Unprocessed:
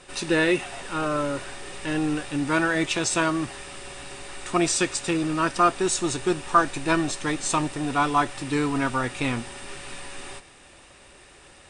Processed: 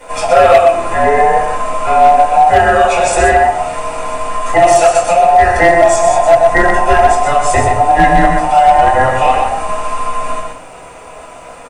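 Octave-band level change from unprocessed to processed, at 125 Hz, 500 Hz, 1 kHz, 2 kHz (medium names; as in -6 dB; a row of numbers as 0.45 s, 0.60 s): +9.0 dB, +18.5 dB, +19.5 dB, +12.0 dB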